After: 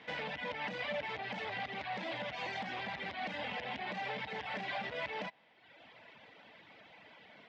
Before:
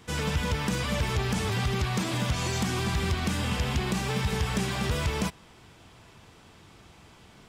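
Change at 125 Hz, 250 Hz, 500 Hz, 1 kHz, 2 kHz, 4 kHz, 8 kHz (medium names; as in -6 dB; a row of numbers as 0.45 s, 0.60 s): -25.5 dB, -17.5 dB, -8.5 dB, -5.5 dB, -5.0 dB, -10.5 dB, under -25 dB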